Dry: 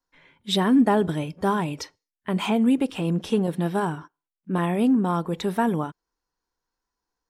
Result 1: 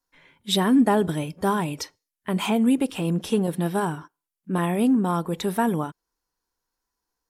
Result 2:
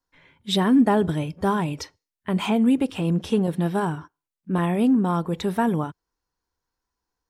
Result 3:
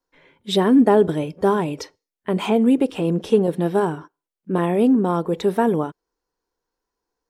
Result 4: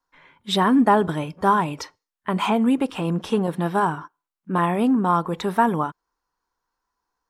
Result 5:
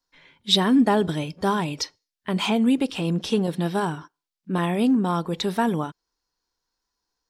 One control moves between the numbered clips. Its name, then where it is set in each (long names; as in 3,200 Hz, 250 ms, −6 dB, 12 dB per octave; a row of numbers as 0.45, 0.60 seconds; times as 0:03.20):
parametric band, centre frequency: 12,000, 83, 440, 1,100, 4,600 Hertz